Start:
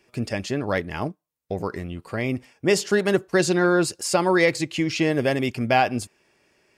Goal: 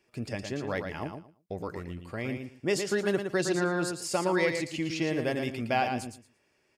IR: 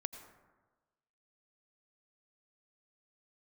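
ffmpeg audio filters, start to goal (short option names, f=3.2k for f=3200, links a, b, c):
-af "aecho=1:1:114|228|342:0.473|0.0899|0.0171,volume=-8.5dB"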